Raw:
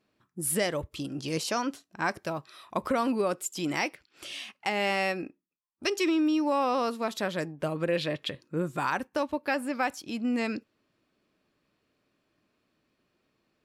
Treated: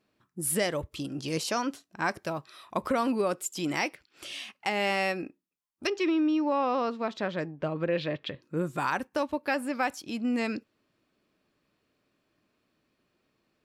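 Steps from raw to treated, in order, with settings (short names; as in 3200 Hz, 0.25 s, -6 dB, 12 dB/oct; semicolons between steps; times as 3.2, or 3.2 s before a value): 5.87–8.43 air absorption 170 m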